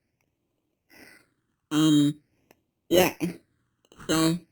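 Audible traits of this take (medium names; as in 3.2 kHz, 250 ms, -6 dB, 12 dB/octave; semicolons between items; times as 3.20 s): aliases and images of a low sample rate 3.5 kHz, jitter 0%; phasing stages 8, 0.45 Hz, lowest notch 650–1600 Hz; Opus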